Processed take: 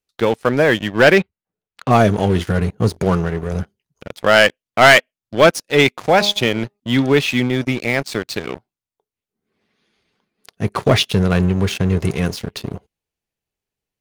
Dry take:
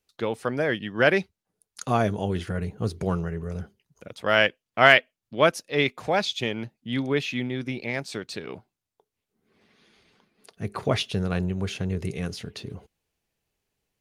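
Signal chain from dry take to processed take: 1.18–1.93 s: low-pass 3.1 kHz 24 dB/octave; 2.89–3.52 s: bass shelf 140 Hz -4 dB; 5.98–6.80 s: de-hum 204.8 Hz, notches 6; waveshaping leveller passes 3

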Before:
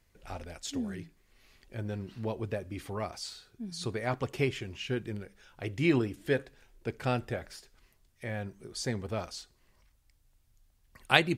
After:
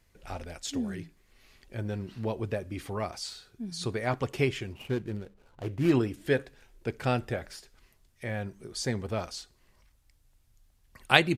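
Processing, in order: 4.73–5.92 s: median filter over 25 samples; resampled via 32 kHz; trim +2.5 dB

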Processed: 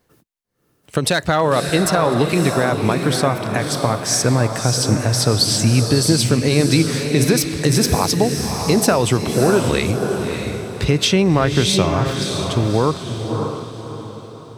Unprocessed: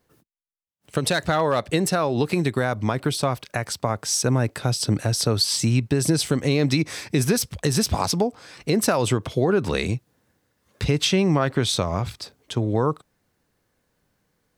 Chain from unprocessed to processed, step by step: echo that smears into a reverb 605 ms, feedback 41%, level -5 dB; trim +4.5 dB

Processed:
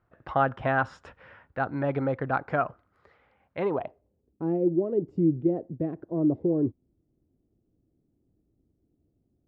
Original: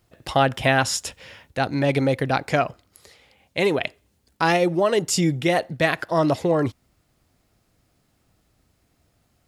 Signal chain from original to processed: low-pass sweep 1.4 kHz -> 340 Hz, 3.59–4.37 s; dynamic bell 2 kHz, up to -5 dB, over -36 dBFS, Q 1.9; trim -7.5 dB

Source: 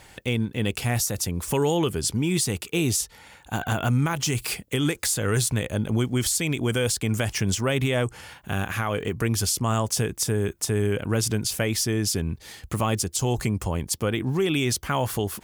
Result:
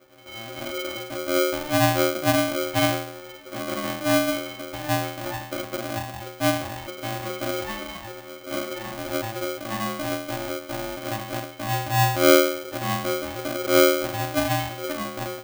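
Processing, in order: jump at every zero crossing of -33.5 dBFS; resonant low-pass 3.1 kHz, resonance Q 2.3; bass shelf 330 Hz +6 dB; pitch-class resonator E, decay 0.69 s; level rider gain up to 11 dB; polarity switched at an audio rate 450 Hz

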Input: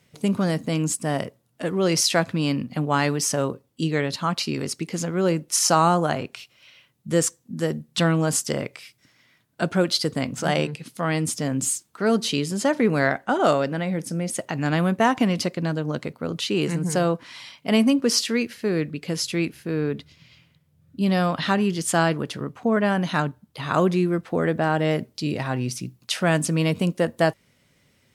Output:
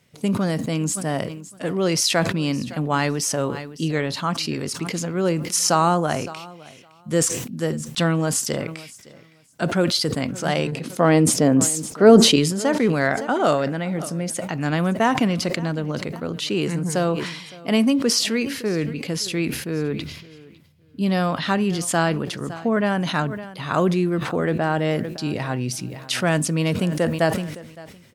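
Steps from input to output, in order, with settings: 10.72–12.36 s: peaking EQ 430 Hz +11.5 dB 2.8 oct; on a send: feedback delay 563 ms, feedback 19%, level -21 dB; on the sum: decay stretcher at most 58 dB/s

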